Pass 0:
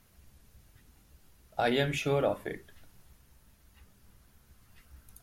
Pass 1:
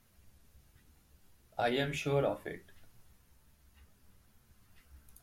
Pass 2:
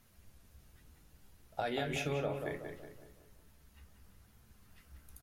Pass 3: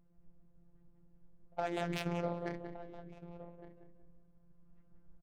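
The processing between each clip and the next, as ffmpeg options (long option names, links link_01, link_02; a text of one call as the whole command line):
ffmpeg -i in.wav -af "flanger=delay=8.3:depth=6.2:regen=55:speed=0.68:shape=triangular" out.wav
ffmpeg -i in.wav -filter_complex "[0:a]acompressor=threshold=-34dB:ratio=6,asplit=2[link_01][link_02];[link_02]adelay=185,lowpass=frequency=2200:poles=1,volume=-5.5dB,asplit=2[link_03][link_04];[link_04]adelay=185,lowpass=frequency=2200:poles=1,volume=0.46,asplit=2[link_05][link_06];[link_06]adelay=185,lowpass=frequency=2200:poles=1,volume=0.46,asplit=2[link_07][link_08];[link_08]adelay=185,lowpass=frequency=2200:poles=1,volume=0.46,asplit=2[link_09][link_10];[link_10]adelay=185,lowpass=frequency=2200:poles=1,volume=0.46,asplit=2[link_11][link_12];[link_12]adelay=185,lowpass=frequency=2200:poles=1,volume=0.46[link_13];[link_01][link_03][link_05][link_07][link_09][link_11][link_13]amix=inputs=7:normalize=0,volume=1.5dB" out.wav
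ffmpeg -i in.wav -af "afftfilt=real='hypot(re,im)*cos(PI*b)':imag='0':win_size=1024:overlap=0.75,aecho=1:1:1165:0.224,adynamicsmooth=sensitivity=7.5:basefreq=510,volume=4dB" out.wav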